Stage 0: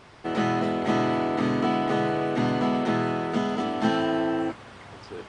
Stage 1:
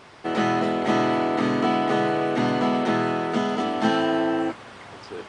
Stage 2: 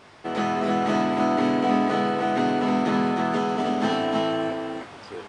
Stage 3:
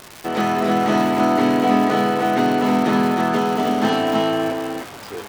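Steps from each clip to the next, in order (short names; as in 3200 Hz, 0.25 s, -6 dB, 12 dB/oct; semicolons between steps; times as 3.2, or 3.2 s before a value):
low shelf 120 Hz -10.5 dB; gain +3.5 dB
doubler 20 ms -6.5 dB; echo 0.31 s -3.5 dB; gain -3 dB
crackle 350/s -30 dBFS; gain +5 dB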